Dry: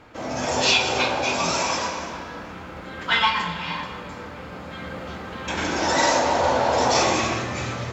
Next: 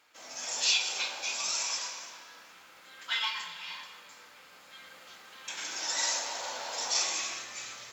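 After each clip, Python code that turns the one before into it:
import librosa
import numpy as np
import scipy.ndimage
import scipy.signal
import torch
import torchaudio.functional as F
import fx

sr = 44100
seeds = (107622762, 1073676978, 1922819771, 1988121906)

y = np.diff(x, prepend=0.0)
y = y * librosa.db_to_amplitude(-1.0)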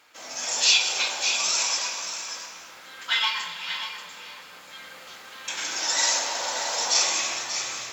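y = x + 10.0 ** (-9.5 / 20.0) * np.pad(x, (int(585 * sr / 1000.0), 0))[:len(x)]
y = y * librosa.db_to_amplitude(7.5)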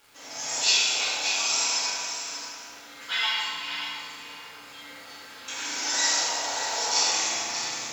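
y = fx.dmg_crackle(x, sr, seeds[0], per_s=170.0, level_db=-38.0)
y = fx.rev_fdn(y, sr, rt60_s=1.4, lf_ratio=1.45, hf_ratio=0.85, size_ms=21.0, drr_db=-6.5)
y = y * librosa.db_to_amplitude(-8.0)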